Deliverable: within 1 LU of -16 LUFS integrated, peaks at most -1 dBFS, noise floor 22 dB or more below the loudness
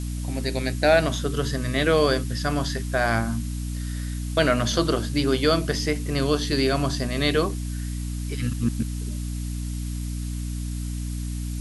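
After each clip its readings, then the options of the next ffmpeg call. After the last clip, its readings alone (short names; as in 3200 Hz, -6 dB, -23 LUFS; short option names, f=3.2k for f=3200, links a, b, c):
hum 60 Hz; harmonics up to 300 Hz; hum level -27 dBFS; noise floor -30 dBFS; noise floor target -47 dBFS; loudness -25.0 LUFS; peak -6.5 dBFS; loudness target -16.0 LUFS
-> -af "bandreject=f=60:t=h:w=4,bandreject=f=120:t=h:w=4,bandreject=f=180:t=h:w=4,bandreject=f=240:t=h:w=4,bandreject=f=300:t=h:w=4"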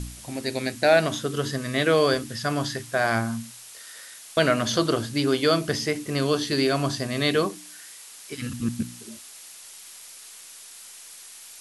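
hum none; noise floor -45 dBFS; noise floor target -47 dBFS
-> -af "afftdn=nr=6:nf=-45"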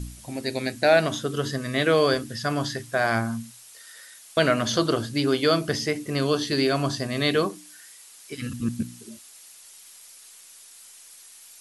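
noise floor -49 dBFS; loudness -24.5 LUFS; peak -7.0 dBFS; loudness target -16.0 LUFS
-> -af "volume=8.5dB,alimiter=limit=-1dB:level=0:latency=1"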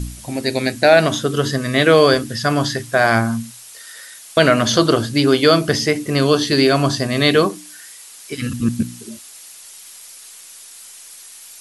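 loudness -16.5 LUFS; peak -1.0 dBFS; noise floor -40 dBFS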